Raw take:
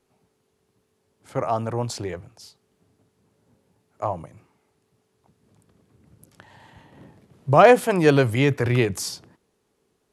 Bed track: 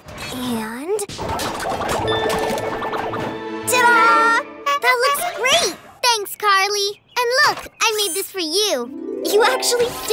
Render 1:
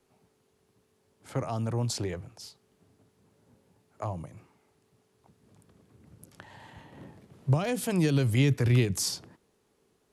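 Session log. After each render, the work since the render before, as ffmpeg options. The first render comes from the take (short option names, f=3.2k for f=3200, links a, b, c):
-filter_complex "[0:a]alimiter=limit=-9.5dB:level=0:latency=1:release=137,acrossover=split=280|3000[a][b][c];[b]acompressor=threshold=-36dB:ratio=4[d];[a][d][c]amix=inputs=3:normalize=0"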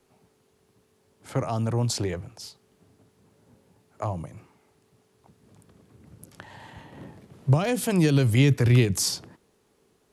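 -af "volume=4.5dB"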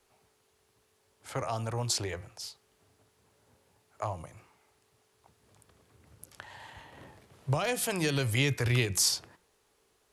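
-af "equalizer=f=200:t=o:w=2.2:g=-13.5,bandreject=f=176.7:t=h:w=4,bandreject=f=353.4:t=h:w=4,bandreject=f=530.1:t=h:w=4,bandreject=f=706.8:t=h:w=4,bandreject=f=883.5:t=h:w=4,bandreject=f=1.0602k:t=h:w=4,bandreject=f=1.2369k:t=h:w=4,bandreject=f=1.4136k:t=h:w=4,bandreject=f=1.5903k:t=h:w=4,bandreject=f=1.767k:t=h:w=4,bandreject=f=1.9437k:t=h:w=4,bandreject=f=2.1204k:t=h:w=4,bandreject=f=2.2971k:t=h:w=4,bandreject=f=2.4738k:t=h:w=4,bandreject=f=2.6505k:t=h:w=4"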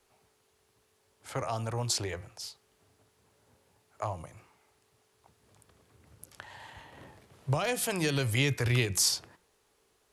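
-af anull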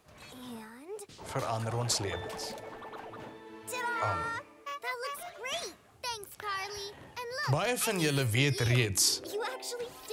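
-filter_complex "[1:a]volume=-21dB[a];[0:a][a]amix=inputs=2:normalize=0"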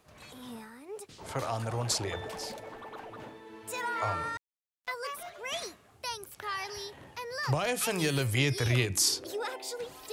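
-filter_complex "[0:a]asettb=1/sr,asplit=3[a][b][c];[a]atrim=end=4.374[d];[b]atrim=start=4.37:end=4.88,asetpts=PTS-STARTPTS,afade=t=in:d=0.004:c=qsin,afade=t=out:st=0.506:d=0.004:c=qsin,acrusher=bits=3:mix=0:aa=0.5[e];[c]atrim=start=4.876[f];[d][e]acrossfade=d=0.004:c1=hsin:c2=qsin[g];[g][f]acrossfade=d=0.004:c1=qsin:c2=hsin"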